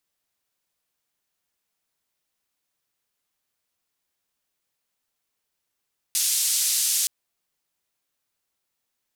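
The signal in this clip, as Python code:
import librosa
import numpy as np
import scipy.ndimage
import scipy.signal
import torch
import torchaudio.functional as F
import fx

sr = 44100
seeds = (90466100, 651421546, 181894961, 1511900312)

y = fx.band_noise(sr, seeds[0], length_s=0.92, low_hz=4700.0, high_hz=11000.0, level_db=-23.0)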